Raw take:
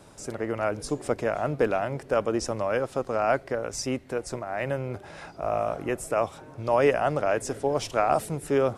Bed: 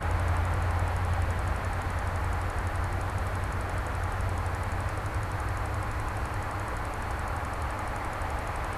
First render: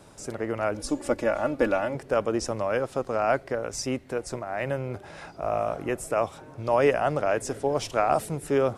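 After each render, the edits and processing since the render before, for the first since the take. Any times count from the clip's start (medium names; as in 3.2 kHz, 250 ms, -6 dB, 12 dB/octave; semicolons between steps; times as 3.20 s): 0.74–1.95 s: comb 3.5 ms, depth 68%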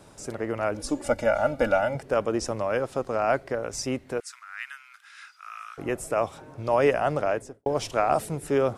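1.04–2.01 s: comb 1.4 ms, depth 67%; 4.20–5.78 s: elliptic high-pass 1.3 kHz, stop band 60 dB; 7.23–7.66 s: studio fade out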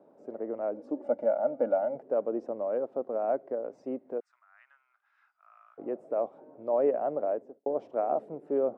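Chebyshev band-pass 230–620 Hz, order 2; tilt EQ +3 dB/octave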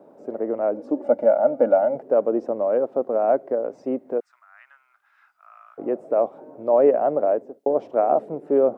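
trim +9.5 dB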